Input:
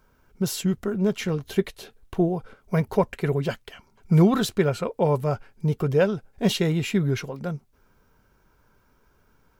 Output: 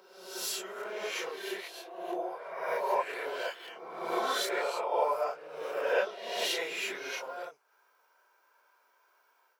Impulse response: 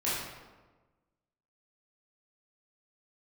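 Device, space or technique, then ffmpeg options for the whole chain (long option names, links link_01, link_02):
ghost voice: -filter_complex "[0:a]areverse[link_01];[1:a]atrim=start_sample=2205[link_02];[link_01][link_02]afir=irnorm=-1:irlink=0,areverse,highpass=frequency=570:width=0.5412,highpass=frequency=570:width=1.3066,volume=-9dB"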